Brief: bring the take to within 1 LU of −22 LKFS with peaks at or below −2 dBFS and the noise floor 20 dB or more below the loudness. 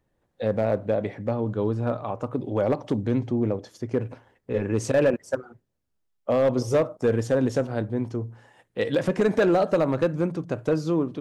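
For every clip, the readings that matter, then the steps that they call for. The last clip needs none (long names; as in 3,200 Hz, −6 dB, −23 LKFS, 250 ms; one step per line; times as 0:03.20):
share of clipped samples 0.8%; peaks flattened at −14.5 dBFS; integrated loudness −25.5 LKFS; sample peak −14.5 dBFS; target loudness −22.0 LKFS
→ clipped peaks rebuilt −14.5 dBFS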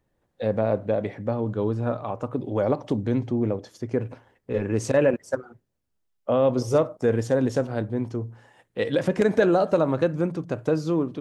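share of clipped samples 0.0%; integrated loudness −25.0 LKFS; sample peak −7.5 dBFS; target loudness −22.0 LKFS
→ level +3 dB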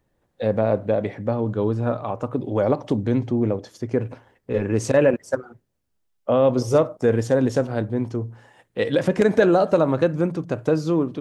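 integrated loudness −22.0 LKFS; sample peak −4.5 dBFS; background noise floor −71 dBFS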